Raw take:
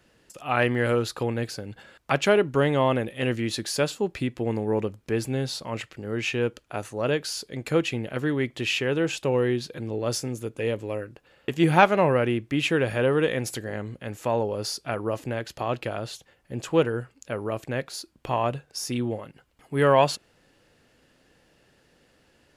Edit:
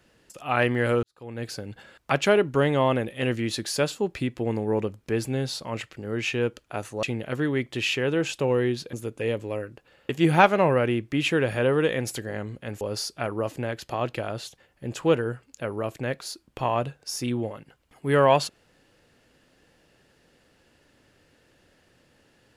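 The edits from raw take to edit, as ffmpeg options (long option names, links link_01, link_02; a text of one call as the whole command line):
ffmpeg -i in.wav -filter_complex "[0:a]asplit=5[link_01][link_02][link_03][link_04][link_05];[link_01]atrim=end=1.03,asetpts=PTS-STARTPTS,afade=type=out:start_time=1.026:duration=0.004:curve=hsin[link_06];[link_02]atrim=start=1.03:end=7.032,asetpts=PTS-STARTPTS,afade=type=in:duration=0.49:curve=qua[link_07];[link_03]atrim=start=7.868:end=9.772[link_08];[link_04]atrim=start=10.318:end=14.202[link_09];[link_05]atrim=start=14.488[link_10];[link_06][link_07]concat=n=2:v=0:a=1[link_11];[link_11][link_08]acrossfade=duration=0.004:curve1=hsin:curve2=hsin[link_12];[link_12][link_09]acrossfade=duration=0.004:curve1=hsin:curve2=hsin[link_13];[link_13][link_10]acrossfade=duration=0.004:curve1=hsin:curve2=hsin" out.wav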